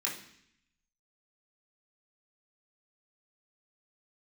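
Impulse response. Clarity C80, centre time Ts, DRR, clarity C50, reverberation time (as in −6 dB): 11.0 dB, 30 ms, −4.5 dB, 6.5 dB, 0.65 s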